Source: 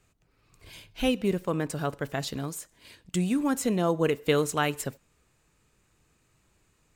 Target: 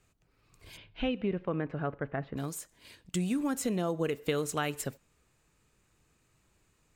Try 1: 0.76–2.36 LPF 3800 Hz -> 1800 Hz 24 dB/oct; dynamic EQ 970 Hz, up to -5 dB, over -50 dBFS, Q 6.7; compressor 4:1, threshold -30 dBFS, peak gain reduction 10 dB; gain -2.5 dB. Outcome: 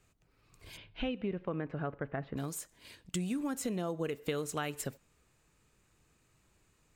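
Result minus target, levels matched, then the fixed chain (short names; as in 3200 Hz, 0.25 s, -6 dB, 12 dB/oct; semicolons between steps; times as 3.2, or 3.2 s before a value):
compressor: peak gain reduction +4.5 dB
0.76–2.36 LPF 3800 Hz -> 1800 Hz 24 dB/oct; dynamic EQ 970 Hz, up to -5 dB, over -50 dBFS, Q 6.7; compressor 4:1, threshold -24 dBFS, peak gain reduction 5.5 dB; gain -2.5 dB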